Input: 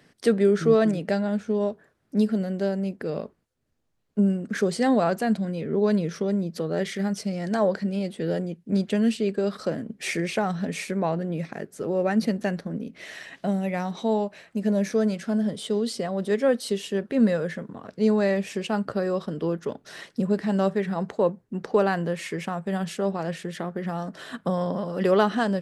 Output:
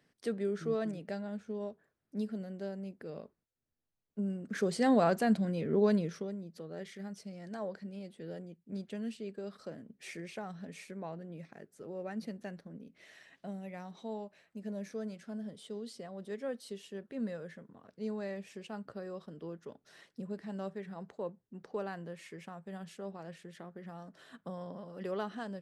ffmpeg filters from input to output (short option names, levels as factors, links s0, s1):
-af "volume=0.596,afade=t=in:st=4.23:d=0.8:silence=0.316228,afade=t=out:st=5.81:d=0.54:silence=0.237137"